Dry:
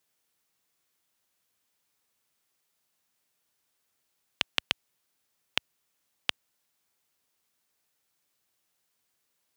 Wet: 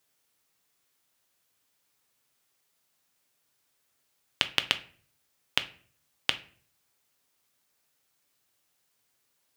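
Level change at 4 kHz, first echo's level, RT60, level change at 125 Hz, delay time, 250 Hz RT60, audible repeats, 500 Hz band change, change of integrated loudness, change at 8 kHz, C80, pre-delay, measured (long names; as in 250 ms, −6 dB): +3.0 dB, no echo audible, 0.50 s, +4.0 dB, no echo audible, 0.60 s, no echo audible, +3.0 dB, +2.5 dB, +3.0 dB, 21.0 dB, 7 ms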